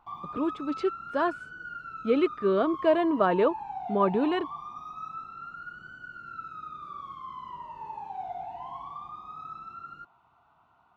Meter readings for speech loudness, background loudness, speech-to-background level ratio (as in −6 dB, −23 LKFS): −27.0 LKFS, −40.0 LKFS, 13.0 dB